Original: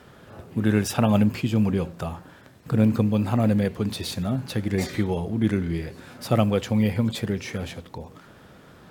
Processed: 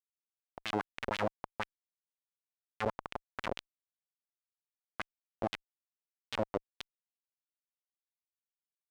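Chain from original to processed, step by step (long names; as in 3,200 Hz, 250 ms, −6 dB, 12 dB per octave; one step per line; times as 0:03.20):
comparator with hysteresis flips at −14.5 dBFS
auto-filter band-pass sine 6.2 Hz 500–3,500 Hz
level +7.5 dB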